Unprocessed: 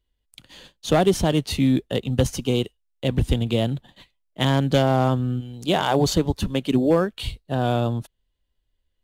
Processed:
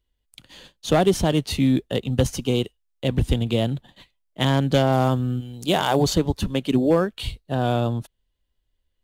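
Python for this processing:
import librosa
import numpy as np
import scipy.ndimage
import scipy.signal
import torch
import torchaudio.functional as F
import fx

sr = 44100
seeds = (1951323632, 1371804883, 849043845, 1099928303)

y = fx.high_shelf(x, sr, hz=7500.0, db=8.0, at=(4.92, 6.03))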